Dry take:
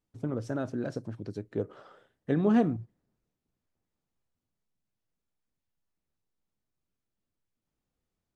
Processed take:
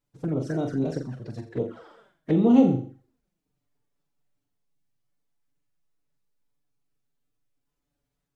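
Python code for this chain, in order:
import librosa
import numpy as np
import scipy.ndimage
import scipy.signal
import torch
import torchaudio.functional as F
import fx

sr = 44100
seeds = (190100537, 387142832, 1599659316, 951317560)

y = fx.room_flutter(x, sr, wall_m=7.2, rt60_s=0.46)
y = fx.pitch_keep_formants(y, sr, semitones=2.0)
y = fx.env_flanger(y, sr, rest_ms=7.0, full_db=-27.5)
y = y * librosa.db_to_amplitude(5.5)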